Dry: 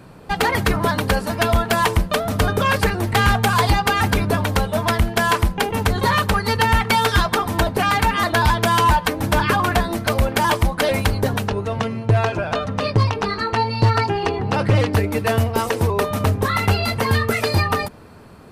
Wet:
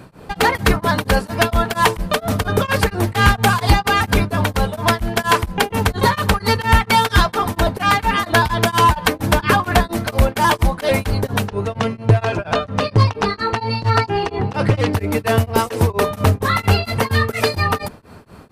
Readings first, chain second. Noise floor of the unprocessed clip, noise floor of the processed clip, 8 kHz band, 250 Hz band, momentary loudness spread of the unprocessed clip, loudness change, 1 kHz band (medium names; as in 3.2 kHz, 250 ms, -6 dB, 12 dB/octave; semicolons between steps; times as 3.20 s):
-35 dBFS, -40 dBFS, +1.5 dB, +1.5 dB, 5 LU, +1.5 dB, +1.5 dB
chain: tremolo of two beating tones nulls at 4.3 Hz; trim +4.5 dB